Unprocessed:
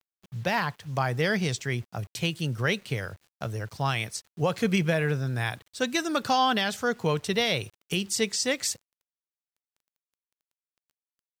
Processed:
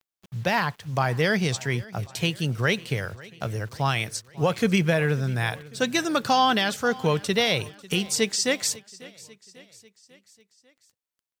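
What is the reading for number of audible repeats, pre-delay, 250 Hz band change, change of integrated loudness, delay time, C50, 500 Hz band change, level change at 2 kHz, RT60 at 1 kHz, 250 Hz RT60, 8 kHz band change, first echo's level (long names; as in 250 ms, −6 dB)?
3, no reverb audible, +3.0 dB, +3.0 dB, 545 ms, no reverb audible, +3.0 dB, +3.0 dB, no reverb audible, no reverb audible, +3.0 dB, −21.0 dB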